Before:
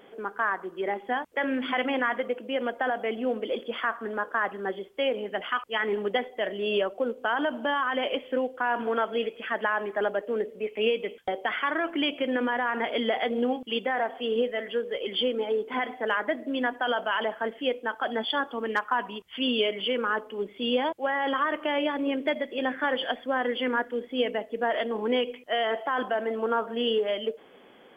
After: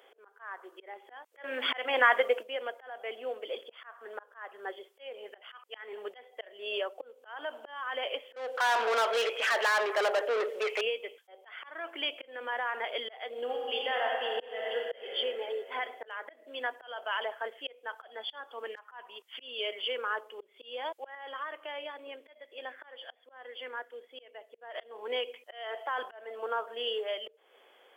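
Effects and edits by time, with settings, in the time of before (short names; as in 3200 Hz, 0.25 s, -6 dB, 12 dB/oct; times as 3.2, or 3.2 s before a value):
1.44–2.43 gain +10 dB
8.36–10.81 overdrive pedal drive 28 dB, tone 2300 Hz, clips at -13.5 dBFS
13.4–15.06 reverb throw, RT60 2.9 s, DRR -1.5 dB
21.15–24.75 gain -6.5 dB
whole clip: auto swell 0.312 s; HPF 440 Hz 24 dB/oct; high shelf 3600 Hz +6.5 dB; gain -6 dB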